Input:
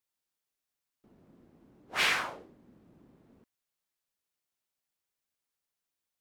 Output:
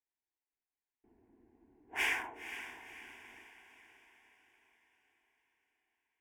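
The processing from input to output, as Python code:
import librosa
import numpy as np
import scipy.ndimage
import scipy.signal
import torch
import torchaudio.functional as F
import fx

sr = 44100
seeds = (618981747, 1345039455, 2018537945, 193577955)

y = fx.wiener(x, sr, points=9)
y = fx.fixed_phaser(y, sr, hz=840.0, stages=8)
y = fx.echo_diffused(y, sr, ms=504, feedback_pct=50, wet_db=-11.0)
y = y * 10.0 ** (-3.0 / 20.0)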